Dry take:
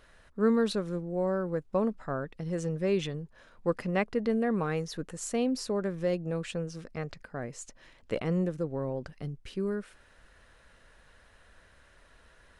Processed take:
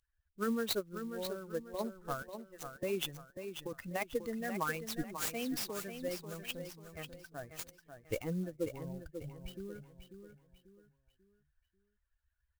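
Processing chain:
spectral dynamics exaggerated over time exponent 2
0:02.22–0:02.83: high-pass filter 940 Hz 12 dB per octave
harmonic and percussive parts rebalanced harmonic −12 dB
compressor whose output falls as the input rises −36 dBFS, ratio −1
repeating echo 541 ms, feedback 36%, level −8.5 dB
converter with an unsteady clock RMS 0.032 ms
level +4 dB

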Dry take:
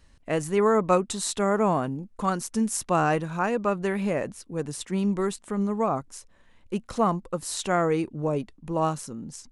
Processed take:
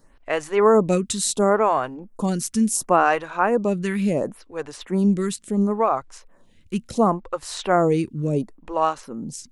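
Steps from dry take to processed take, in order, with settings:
phaser with staggered stages 0.71 Hz
level +7 dB

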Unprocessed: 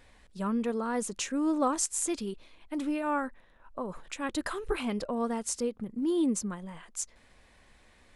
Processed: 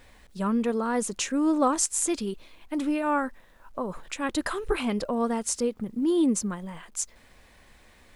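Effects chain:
bit reduction 12 bits
level +4.5 dB

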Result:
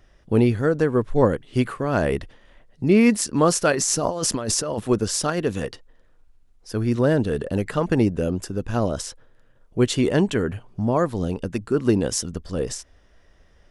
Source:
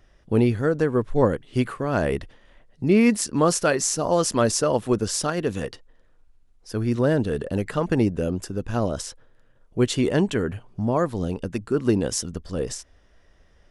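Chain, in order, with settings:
0:03.72–0:04.80: compressor whose output falls as the input rises −26 dBFS, ratio −1
level +1.5 dB

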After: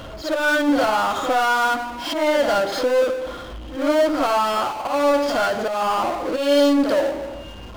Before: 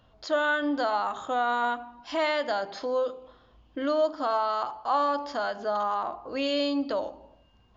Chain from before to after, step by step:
volume swells 196 ms
hollow resonant body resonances 320/550/1,400/3,200 Hz, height 9 dB
power curve on the samples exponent 0.5
backwards echo 56 ms −6.5 dB

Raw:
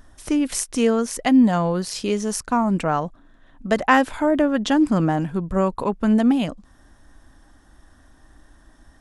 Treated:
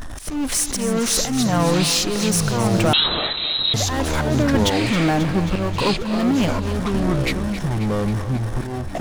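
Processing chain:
downward compressor, threshold −19 dBFS, peak gain reduction 9 dB
volume swells 338 ms
power curve on the samples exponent 0.5
delay with pitch and tempo change per echo 285 ms, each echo −7 semitones, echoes 2
on a send: feedback echo with a high-pass in the loop 269 ms, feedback 70%, high-pass 200 Hz, level −12 dB
0:02.93–0:03.74: on the sum: voice inversion scrambler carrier 4,000 Hz
level −2 dB

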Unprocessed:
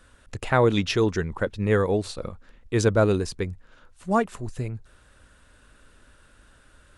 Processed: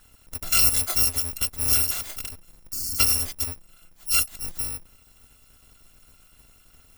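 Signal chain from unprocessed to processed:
samples in bit-reversed order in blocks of 256 samples
0:01.91–0:03.00: wrap-around overflow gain 24 dB
0:02.74–0:02.97: healed spectral selection 360–4,200 Hz before

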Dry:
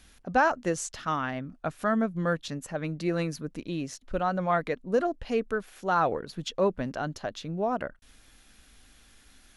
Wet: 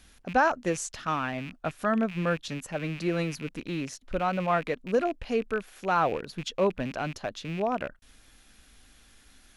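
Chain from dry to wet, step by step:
loose part that buzzes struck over −44 dBFS, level −31 dBFS

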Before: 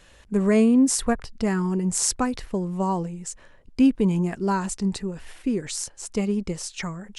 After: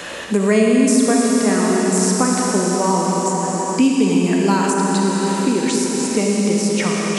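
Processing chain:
high-pass filter 220 Hz 12 dB per octave
convolution reverb RT60 4.5 s, pre-delay 4 ms, DRR −2.5 dB
multiband upward and downward compressor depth 70%
level +5 dB

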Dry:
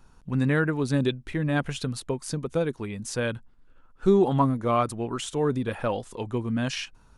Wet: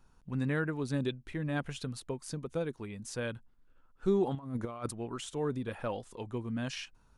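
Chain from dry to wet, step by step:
0:04.35–0:04.91: compressor whose output falls as the input rises −28 dBFS, ratio −0.5
level −8.5 dB

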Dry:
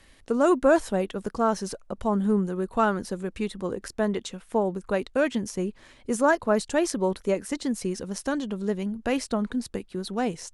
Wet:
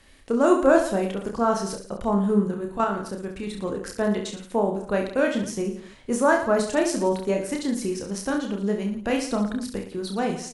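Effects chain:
0:02.47–0:03.47: output level in coarse steps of 10 dB
on a send: reverse bouncing-ball delay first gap 30 ms, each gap 1.25×, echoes 5

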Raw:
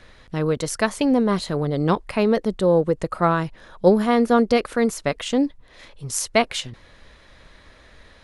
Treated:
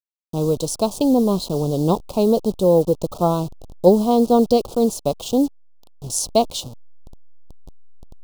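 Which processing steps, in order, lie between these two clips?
hold until the input has moved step −32.5 dBFS
Chebyshev band-stop filter 820–4,000 Hz, order 2
level +3 dB

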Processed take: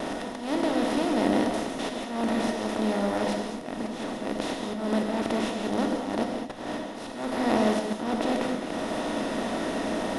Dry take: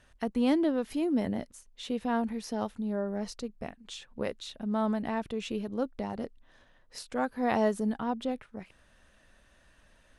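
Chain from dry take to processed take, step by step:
compressor on every frequency bin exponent 0.2
notch filter 1,600 Hz, Q 16
on a send: backwards echo 138 ms −24 dB
on the sum: noise gate with hold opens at −18 dBFS
volume swells 198 ms
reverb whose tail is shaped and stops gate 250 ms flat, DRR 1 dB
level −5 dB

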